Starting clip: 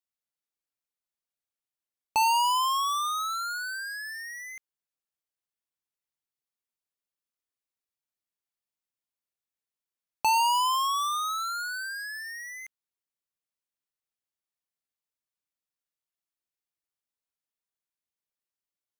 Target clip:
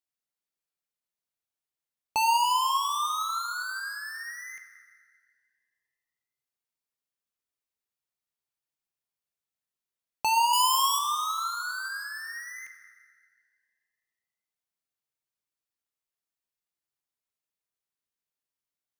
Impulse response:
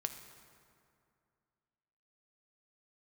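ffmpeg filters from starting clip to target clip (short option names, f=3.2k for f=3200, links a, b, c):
-filter_complex "[0:a]asettb=1/sr,asplit=3[a][b][c];[a]atrim=end=10.534[d];[b]atrim=start=10.53:end=10.99,asetpts=PTS-STARTPTS,afade=t=in:d=0.004:c=qsin,afade=t=out:st=0.456:d=0.004:c=qsin,highshelf=f=4.2k:g=11.5[e];[c]atrim=start=10.986[f];[d][e]acrossfade=d=0.004:c1=hsin:c2=qsin[g];[g][f]acrossfade=d=0.004:c1=qsin:c2=hsin[h];[1:a]atrim=start_sample=2205[i];[h][i]afir=irnorm=-1:irlink=0"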